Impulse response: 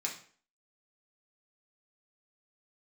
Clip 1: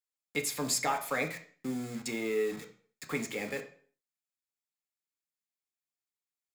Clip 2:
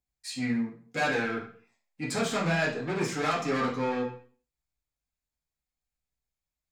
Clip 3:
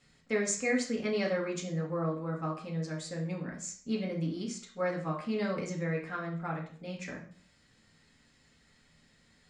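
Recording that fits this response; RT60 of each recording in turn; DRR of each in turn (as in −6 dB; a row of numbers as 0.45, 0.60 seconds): 3; 0.45, 0.45, 0.45 seconds; 4.0, −6.0, −2.0 decibels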